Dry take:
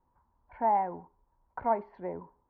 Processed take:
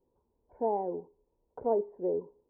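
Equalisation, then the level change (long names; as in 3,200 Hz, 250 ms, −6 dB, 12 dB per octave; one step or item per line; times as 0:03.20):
low-pass with resonance 440 Hz, resonance Q 4.7
low-shelf EQ 170 Hz −7.5 dB
0.0 dB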